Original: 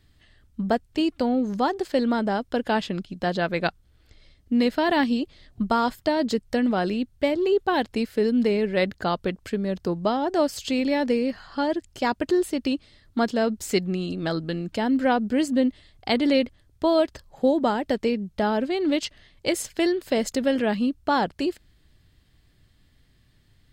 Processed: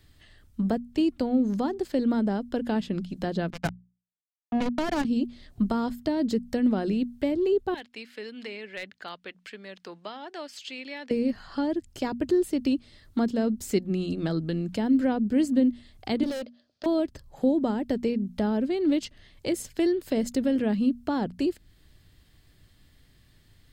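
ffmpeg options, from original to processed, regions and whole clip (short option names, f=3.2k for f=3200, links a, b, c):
-filter_complex "[0:a]asettb=1/sr,asplit=3[a][b][c];[a]atrim=end=3.504[d];[b]atrim=start=3.5:end=5.05,asetpts=PTS-STARTPTS,afade=t=in:d=0.004:c=qsin,afade=t=out:st=1.546:d=0.004:c=qsin,lowpass=2.9k,aecho=1:1:1.3:0.88,atrim=end_sample=68355,acrusher=bits=2:mix=0:aa=0.5[e];[c]atrim=start=5.046[f];[d][e]acrossfade=d=0.004:c1=hsin:c2=qsin[g];[g][f]acrossfade=d=0.004:c1=qsin:c2=hsin,asettb=1/sr,asplit=3[h][i][j];[h]atrim=end=7.744[k];[i]atrim=start=7.74:end=11.11,asetpts=PTS-STARTPTS,afade=t=in:d=0.004:c=qsin,afade=t=out:st=3.366:d=0.004:c=qsin,bandpass=f=2.5k:t=q:w=1.1,aeval=exprs='clip(val(0),-1,0.0944)':c=same[l];[j]atrim=start=11.106[m];[k][l]acrossfade=d=0.004:c1=hsin:c2=qsin[n];[n][m]acrossfade=d=0.004:c1=qsin:c2=hsin,asettb=1/sr,asplit=3[o][p][q];[o]atrim=end=16.234[r];[p]atrim=start=16.23:end=16.86,asetpts=PTS-STARTPTS,afade=t=in:d=0.004:c=qsin,afade=t=out:st=0.626:d=0.004:c=qsin,highpass=400,equalizer=f=400:t=q:w=4:g=-9,equalizer=f=600:t=q:w=4:g=9,equalizer=f=910:t=q:w=4:g=-9,equalizer=f=1.3k:t=q:w=4:g=-3,equalizer=f=2.1k:t=q:w=4:g=-8,equalizer=f=4.7k:t=q:w=4:g=8,lowpass=f=5.2k:w=0.5412,lowpass=f=5.2k:w=1.3066,asoftclip=type=hard:threshold=-26dB[s];[q]atrim=start=16.856[t];[r][s]acrossfade=d=0.004:c1=hsin:c2=qsin[u];[u][t]acrossfade=d=0.004:c1=qsin:c2=hsin,highshelf=f=8.3k:g=5.5,bandreject=f=60:t=h:w=6,bandreject=f=120:t=h:w=6,bandreject=f=180:t=h:w=6,bandreject=f=240:t=h:w=6,acrossover=split=380[v][w];[w]acompressor=threshold=-45dB:ratio=2[x];[v][x]amix=inputs=2:normalize=0,volume=2dB"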